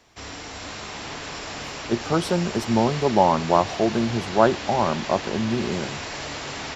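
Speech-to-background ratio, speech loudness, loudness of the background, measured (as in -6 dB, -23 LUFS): 9.5 dB, -23.0 LUFS, -32.5 LUFS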